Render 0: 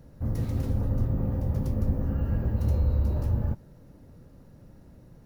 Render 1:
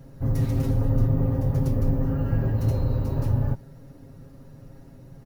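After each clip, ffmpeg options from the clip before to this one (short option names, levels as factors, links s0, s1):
-af "aecho=1:1:7.4:0.82,volume=1.41"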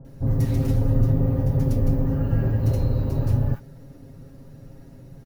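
-filter_complex "[0:a]acrossover=split=1100[s0][s1];[s1]adelay=50[s2];[s0][s2]amix=inputs=2:normalize=0,volume=1.26"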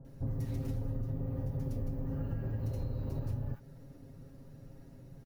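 -af "acompressor=threshold=0.0631:ratio=6,volume=0.398"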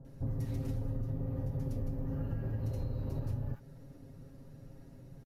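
-af "aresample=32000,aresample=44100"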